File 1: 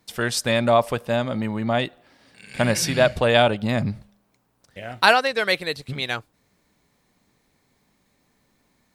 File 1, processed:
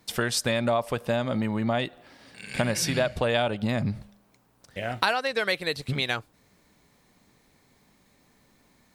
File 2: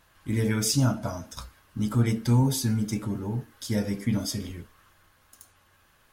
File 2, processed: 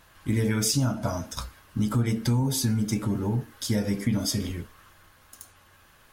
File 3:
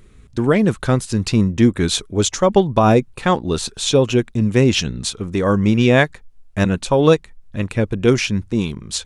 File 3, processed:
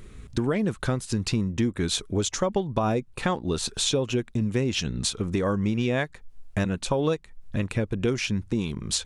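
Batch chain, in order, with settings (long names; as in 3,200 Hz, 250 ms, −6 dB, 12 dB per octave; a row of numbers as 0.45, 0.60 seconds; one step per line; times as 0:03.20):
downward compressor 4 to 1, threshold −27 dBFS
loudness normalisation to −27 LKFS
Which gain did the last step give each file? +3.5, +5.5, +2.5 decibels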